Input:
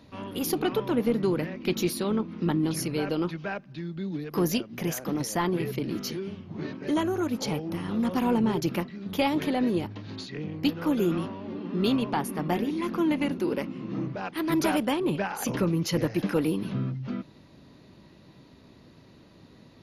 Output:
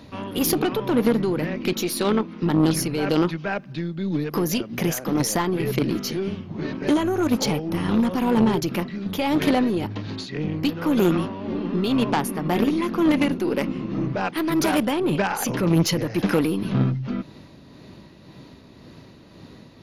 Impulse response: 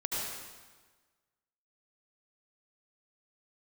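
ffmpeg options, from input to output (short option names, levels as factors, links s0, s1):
-filter_complex "[0:a]asettb=1/sr,asplit=3[s0][s1][s2];[s0]atrim=end=1.734[s3];[s1]atrim=start=1.73:end=2.43,asetpts=PTS-STARTPTS,afade=t=in:d=0.004:c=qsin,afade=t=out:st=0.696:d=0.004:c=qsin,lowshelf=f=180:g=-10.5[s4];[s2]atrim=start=2.426[s5];[s3][s4]acrossfade=d=0.004:c1=hsin:c2=qsin[s6];[s6][s5]acrossfade=d=0.004:c1=qsin:c2=hsin,alimiter=limit=0.0944:level=0:latency=1:release=54,tremolo=f=1.9:d=0.37,aeval=exprs='0.0944*(cos(1*acos(clip(val(0)/0.0944,-1,1)))-cos(1*PI/2))+0.0335*(cos(2*acos(clip(val(0)/0.0944,-1,1)))-cos(2*PI/2))+0.015*(cos(4*acos(clip(val(0)/0.0944,-1,1)))-cos(4*PI/2))':c=same,volume=2.82"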